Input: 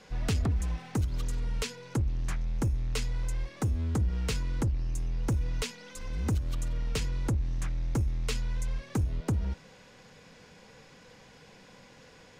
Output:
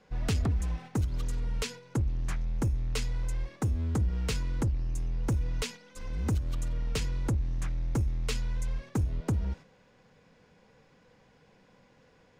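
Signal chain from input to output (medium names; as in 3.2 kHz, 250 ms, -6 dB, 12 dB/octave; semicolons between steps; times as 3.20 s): gate -43 dBFS, range -6 dB; tape noise reduction on one side only decoder only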